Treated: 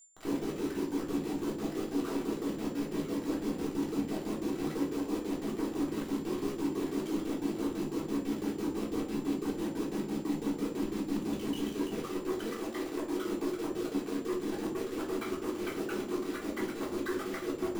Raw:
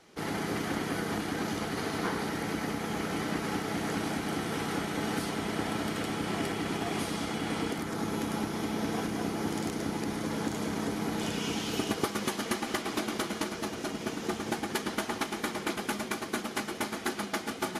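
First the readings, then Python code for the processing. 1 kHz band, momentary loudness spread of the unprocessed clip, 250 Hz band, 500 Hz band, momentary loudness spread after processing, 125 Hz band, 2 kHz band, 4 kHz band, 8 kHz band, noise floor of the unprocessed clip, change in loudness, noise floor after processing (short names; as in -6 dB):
-8.5 dB, 2 LU, +0.5 dB, 0.0 dB, 2 LU, -6.5 dB, -10.0 dB, -10.0 dB, -9.0 dB, -40 dBFS, -2.0 dB, -41 dBFS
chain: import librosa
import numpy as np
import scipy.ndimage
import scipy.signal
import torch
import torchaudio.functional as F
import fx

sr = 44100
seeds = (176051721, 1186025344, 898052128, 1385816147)

y = fx.envelope_sharpen(x, sr, power=3.0)
y = fx.rider(y, sr, range_db=10, speed_s=0.5)
y = fx.filter_lfo_bandpass(y, sr, shape='square', hz=6.0, low_hz=330.0, high_hz=3400.0, q=1.7)
y = 10.0 ** (-35.0 / 20.0) * np.tanh(y / 10.0 ** (-35.0 / 20.0))
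y = fx.quant_dither(y, sr, seeds[0], bits=8, dither='none')
y = y + 10.0 ** (-58.0 / 20.0) * np.sin(2.0 * np.pi * 7200.0 * np.arange(len(y)) / sr)
y = fx.room_shoebox(y, sr, seeds[1], volume_m3=360.0, walls='furnished', distance_m=3.6)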